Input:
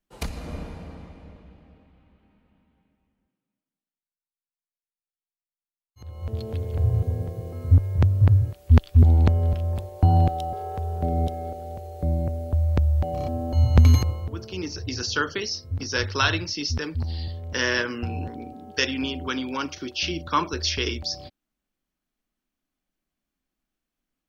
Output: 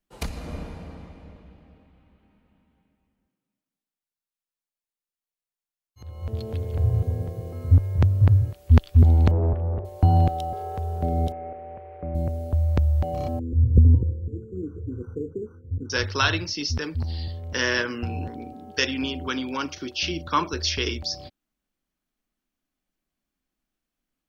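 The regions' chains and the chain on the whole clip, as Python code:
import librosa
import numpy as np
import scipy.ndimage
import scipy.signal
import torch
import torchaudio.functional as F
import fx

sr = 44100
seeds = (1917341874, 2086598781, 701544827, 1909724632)

y = fx.chain(x, sr, fx.lowpass(hz=1800.0, slope=24),
    fx.peak_eq(hz=400.0, db=11.5, octaves=0.21),
    fx.doppler_dist(depth_ms=0.68), at=(9.31, 9.85))
y = fx.chain(y, sr, fx.delta_hold(step_db=-48.5),
    fx.cheby1_lowpass(hz=2400.0, order=4),
    fx.low_shelf(hz=230.0, db=-10.0), at=(11.32, 12.15))
y = fx.chain(y, sr, fx.brickwall_bandstop(low_hz=530.0, high_hz=5800.0),
    fx.air_absorb(metres=320.0),
    fx.resample_linear(factor=6), at=(13.39, 15.9))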